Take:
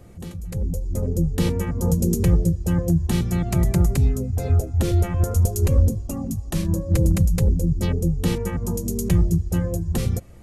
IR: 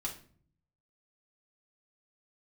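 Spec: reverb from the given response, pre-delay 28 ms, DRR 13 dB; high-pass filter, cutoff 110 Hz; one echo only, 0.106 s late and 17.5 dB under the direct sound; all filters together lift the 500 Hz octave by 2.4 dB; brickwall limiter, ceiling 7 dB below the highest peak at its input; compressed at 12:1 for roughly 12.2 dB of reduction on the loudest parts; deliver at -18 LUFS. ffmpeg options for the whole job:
-filter_complex "[0:a]highpass=110,equalizer=f=500:t=o:g=3,acompressor=threshold=-28dB:ratio=12,alimiter=limit=-24dB:level=0:latency=1,aecho=1:1:106:0.133,asplit=2[a][b];[1:a]atrim=start_sample=2205,adelay=28[c];[b][c]afir=irnorm=-1:irlink=0,volume=-14dB[d];[a][d]amix=inputs=2:normalize=0,volume=16dB"

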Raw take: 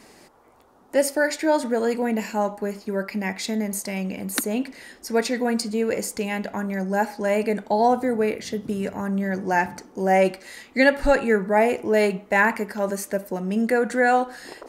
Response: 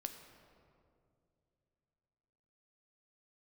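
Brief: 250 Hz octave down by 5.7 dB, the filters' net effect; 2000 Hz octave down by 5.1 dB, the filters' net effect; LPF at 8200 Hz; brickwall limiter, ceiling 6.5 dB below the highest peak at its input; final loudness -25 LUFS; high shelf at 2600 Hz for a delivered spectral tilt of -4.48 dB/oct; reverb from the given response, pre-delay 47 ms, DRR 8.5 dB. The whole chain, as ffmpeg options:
-filter_complex "[0:a]lowpass=8.2k,equalizer=f=250:t=o:g=-7,equalizer=f=2k:t=o:g=-4,highshelf=f=2.6k:g=-5.5,alimiter=limit=-15dB:level=0:latency=1,asplit=2[a][b];[1:a]atrim=start_sample=2205,adelay=47[c];[b][c]afir=irnorm=-1:irlink=0,volume=-6dB[d];[a][d]amix=inputs=2:normalize=0,volume=2dB"

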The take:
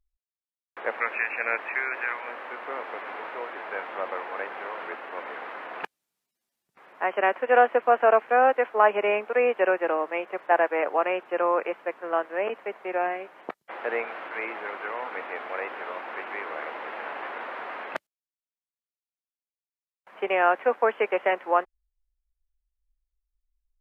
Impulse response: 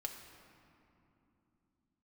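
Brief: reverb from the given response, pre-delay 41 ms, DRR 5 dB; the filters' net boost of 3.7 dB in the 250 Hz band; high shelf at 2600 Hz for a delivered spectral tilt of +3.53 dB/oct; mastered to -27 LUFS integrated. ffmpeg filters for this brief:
-filter_complex "[0:a]equalizer=f=250:t=o:g=6,highshelf=f=2.6k:g=-7,asplit=2[a][b];[1:a]atrim=start_sample=2205,adelay=41[c];[b][c]afir=irnorm=-1:irlink=0,volume=-3.5dB[d];[a][d]amix=inputs=2:normalize=0,volume=-1.5dB"

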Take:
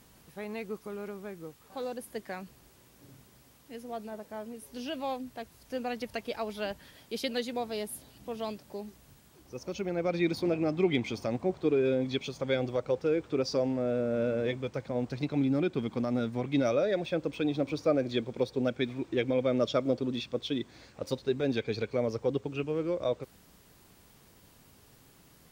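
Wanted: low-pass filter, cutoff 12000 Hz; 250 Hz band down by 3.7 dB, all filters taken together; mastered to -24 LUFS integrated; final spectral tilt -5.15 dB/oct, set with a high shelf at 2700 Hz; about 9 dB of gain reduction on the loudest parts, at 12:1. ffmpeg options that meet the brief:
-af "lowpass=12k,equalizer=f=250:t=o:g=-4.5,highshelf=f=2.7k:g=-5.5,acompressor=threshold=-33dB:ratio=12,volume=16dB"

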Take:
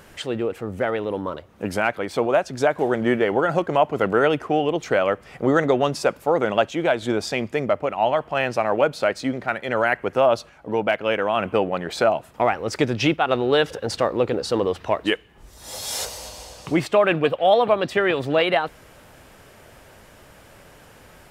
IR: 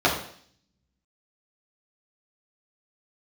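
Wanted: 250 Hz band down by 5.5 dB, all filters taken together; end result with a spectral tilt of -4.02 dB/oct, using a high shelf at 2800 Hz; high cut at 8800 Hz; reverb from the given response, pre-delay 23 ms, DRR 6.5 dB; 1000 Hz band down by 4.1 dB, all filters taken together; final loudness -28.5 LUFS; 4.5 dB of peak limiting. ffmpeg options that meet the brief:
-filter_complex "[0:a]lowpass=8.8k,equalizer=f=250:t=o:g=-7.5,equalizer=f=1k:t=o:g=-4.5,highshelf=f=2.8k:g=-6.5,alimiter=limit=-14dB:level=0:latency=1,asplit=2[a][b];[1:a]atrim=start_sample=2205,adelay=23[c];[b][c]afir=irnorm=-1:irlink=0,volume=-25dB[d];[a][d]amix=inputs=2:normalize=0,volume=-2.5dB"

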